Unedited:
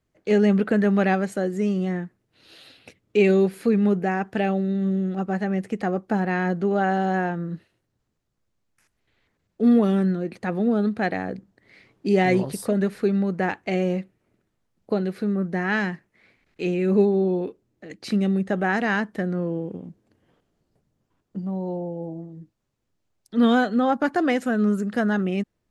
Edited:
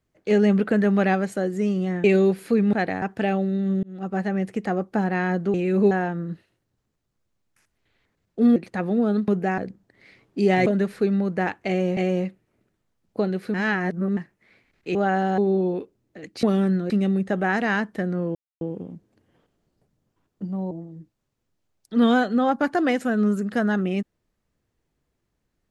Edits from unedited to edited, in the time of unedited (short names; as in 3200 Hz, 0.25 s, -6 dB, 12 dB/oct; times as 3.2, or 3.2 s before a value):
2.04–3.19 cut
3.88–4.18 swap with 10.97–11.26
4.99–5.32 fade in
6.7–7.13 swap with 16.68–17.05
9.78–10.25 move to 18.1
12.34–12.68 cut
13.7–13.99 loop, 2 plays
15.27–15.9 reverse
19.55 insert silence 0.26 s
21.65–22.12 cut